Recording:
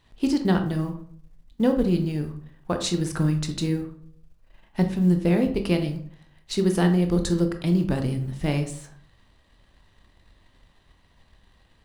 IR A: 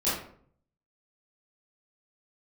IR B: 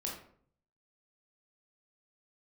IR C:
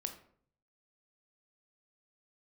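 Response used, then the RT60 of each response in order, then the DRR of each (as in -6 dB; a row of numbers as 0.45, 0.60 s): C; 0.55, 0.55, 0.55 s; -12.0, -2.5, 6.0 dB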